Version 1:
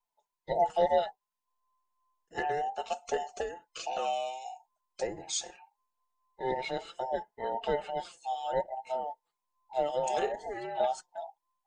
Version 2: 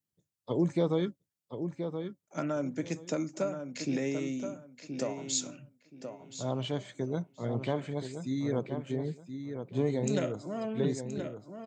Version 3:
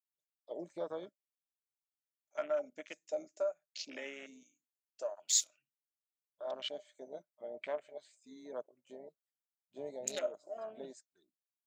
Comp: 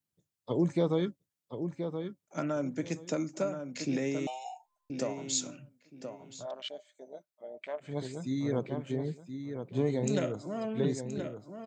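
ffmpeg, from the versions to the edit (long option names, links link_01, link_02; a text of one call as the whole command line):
ffmpeg -i take0.wav -i take1.wav -i take2.wav -filter_complex "[1:a]asplit=3[link_01][link_02][link_03];[link_01]atrim=end=4.272[link_04];[0:a]atrim=start=4.268:end=4.902[link_05];[link_02]atrim=start=4.898:end=6.47[link_06];[2:a]atrim=start=6.31:end=7.96[link_07];[link_03]atrim=start=7.8[link_08];[link_04][link_05]acrossfade=duration=0.004:curve1=hsin:curve2=hsin[link_09];[link_09][link_06]acrossfade=duration=0.004:curve1=hsin:curve2=hsin[link_10];[link_10][link_07]acrossfade=duration=0.16:curve1=tri:curve2=tri[link_11];[link_11][link_08]acrossfade=duration=0.16:curve1=tri:curve2=tri" out.wav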